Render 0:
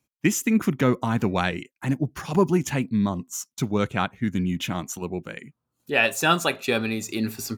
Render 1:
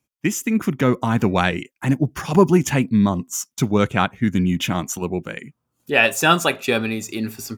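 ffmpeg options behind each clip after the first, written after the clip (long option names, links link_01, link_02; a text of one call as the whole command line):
ffmpeg -i in.wav -af "bandreject=frequency=4100:width=11,dynaudnorm=framelen=140:gausssize=13:maxgain=9dB" out.wav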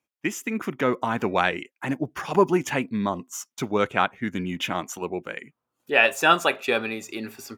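ffmpeg -i in.wav -af "bass=frequency=250:gain=-14,treble=frequency=4000:gain=-8,volume=-1.5dB" out.wav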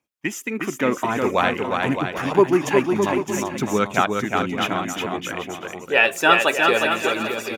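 ffmpeg -i in.wav -filter_complex "[0:a]aphaser=in_gain=1:out_gain=1:delay=3.7:decay=0.3:speed=0.55:type=triangular,asplit=2[link_01][link_02];[link_02]aecho=0:1:360|612|788.4|911.9|998.3:0.631|0.398|0.251|0.158|0.1[link_03];[link_01][link_03]amix=inputs=2:normalize=0,volume=1.5dB" out.wav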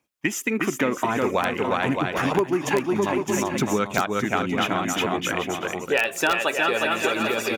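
ffmpeg -i in.wav -filter_complex "[0:a]asplit=2[link_01][link_02];[link_02]aeval=exprs='(mod(1.5*val(0)+1,2)-1)/1.5':channel_layout=same,volume=-4dB[link_03];[link_01][link_03]amix=inputs=2:normalize=0,acompressor=threshold=-19dB:ratio=6" out.wav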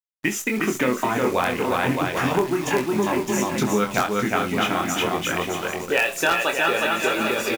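ffmpeg -i in.wav -filter_complex "[0:a]acrusher=bits=7:dc=4:mix=0:aa=0.000001,asplit=2[link_01][link_02];[link_02]aecho=0:1:24|68:0.562|0.168[link_03];[link_01][link_03]amix=inputs=2:normalize=0" out.wav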